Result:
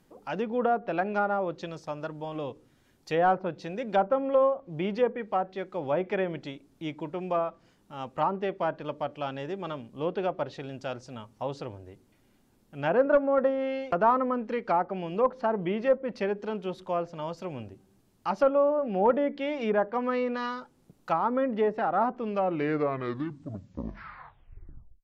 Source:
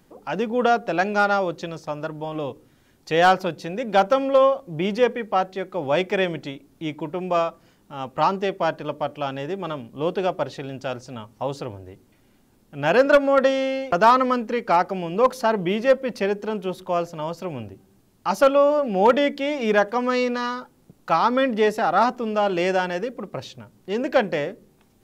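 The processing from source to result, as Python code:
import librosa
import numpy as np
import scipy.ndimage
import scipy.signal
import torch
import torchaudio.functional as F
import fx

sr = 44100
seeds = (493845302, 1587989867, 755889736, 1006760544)

y = fx.tape_stop_end(x, sr, length_s=2.82)
y = fx.env_lowpass_down(y, sr, base_hz=1200.0, full_db=-16.0)
y = F.gain(torch.from_numpy(y), -6.0).numpy()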